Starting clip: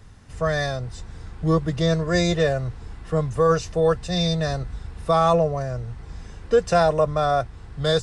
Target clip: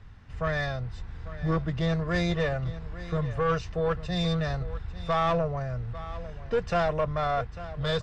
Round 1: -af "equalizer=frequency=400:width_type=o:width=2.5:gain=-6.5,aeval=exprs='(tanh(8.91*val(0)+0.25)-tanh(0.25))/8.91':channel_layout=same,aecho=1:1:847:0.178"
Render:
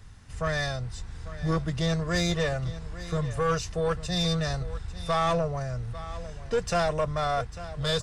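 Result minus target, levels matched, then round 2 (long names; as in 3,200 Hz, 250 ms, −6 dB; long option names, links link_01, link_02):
4,000 Hz band +4.5 dB
-af "lowpass=3000,equalizer=frequency=400:width_type=o:width=2.5:gain=-6.5,aeval=exprs='(tanh(8.91*val(0)+0.25)-tanh(0.25))/8.91':channel_layout=same,aecho=1:1:847:0.178"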